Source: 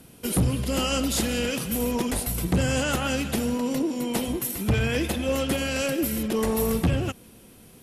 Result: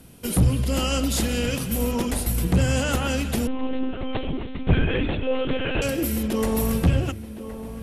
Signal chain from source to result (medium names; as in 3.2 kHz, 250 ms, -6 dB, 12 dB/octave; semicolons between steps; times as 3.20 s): bass shelf 120 Hz +9 dB; hum notches 50/100/150/200/250/300/350/400/450 Hz; filtered feedback delay 1066 ms, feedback 43%, low-pass 1.8 kHz, level -12 dB; 3.47–5.82 s: monotone LPC vocoder at 8 kHz 260 Hz